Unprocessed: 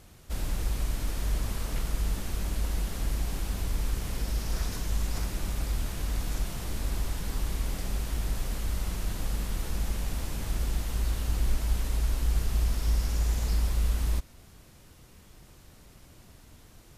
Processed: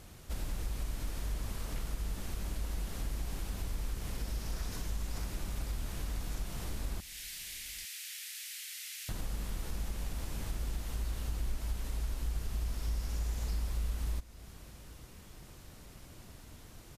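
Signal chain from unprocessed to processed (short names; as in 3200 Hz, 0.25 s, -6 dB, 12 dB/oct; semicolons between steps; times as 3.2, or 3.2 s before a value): 7–9.09 steep high-pass 1900 Hz 36 dB/oct; compressor 2:1, threshold -40 dBFS, peak gain reduction 11 dB; on a send: echo 0.848 s -20.5 dB; on the sum: gain +1 dB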